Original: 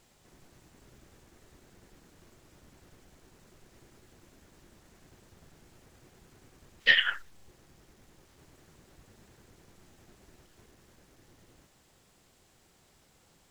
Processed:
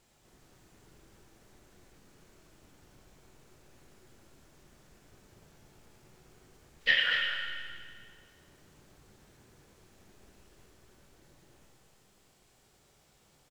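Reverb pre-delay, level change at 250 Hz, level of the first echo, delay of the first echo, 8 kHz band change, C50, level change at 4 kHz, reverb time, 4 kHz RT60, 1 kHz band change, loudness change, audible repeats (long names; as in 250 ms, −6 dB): 18 ms, −2.0 dB, −7.0 dB, 240 ms, can't be measured, 0.5 dB, −1.0 dB, 1.9 s, 1.9 s, 0.0 dB, −4.0 dB, 1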